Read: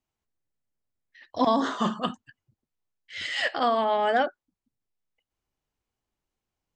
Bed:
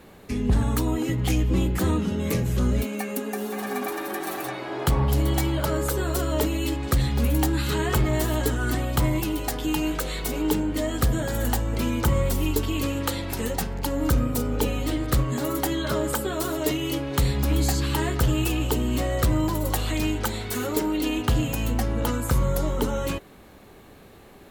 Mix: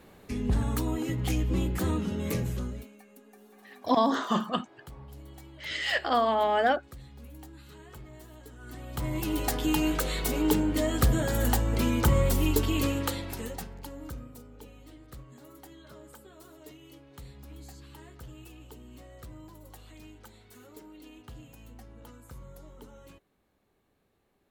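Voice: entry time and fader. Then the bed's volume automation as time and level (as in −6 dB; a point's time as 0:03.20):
2.50 s, −1.0 dB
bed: 0:02.46 −5.5 dB
0:03.01 −25 dB
0:08.48 −25 dB
0:09.39 −1 dB
0:12.87 −1 dB
0:14.52 −24.5 dB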